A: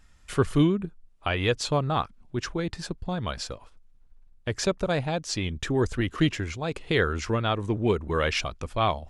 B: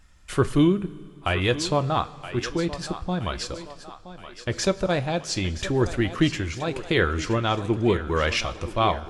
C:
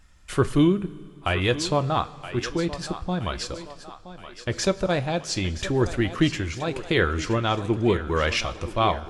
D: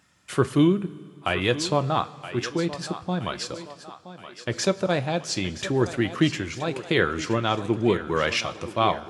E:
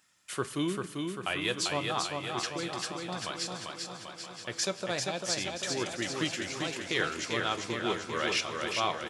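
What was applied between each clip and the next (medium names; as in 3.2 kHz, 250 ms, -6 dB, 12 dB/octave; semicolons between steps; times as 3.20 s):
thinning echo 972 ms, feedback 52%, high-pass 260 Hz, level -12.5 dB; two-slope reverb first 0.21 s, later 2.5 s, from -18 dB, DRR 10 dB; trim +2 dB
no audible change
high-pass 110 Hz 24 dB/octave
tilt EQ +2.5 dB/octave; on a send: feedback delay 394 ms, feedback 59%, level -4 dB; on the sum: trim -8.5 dB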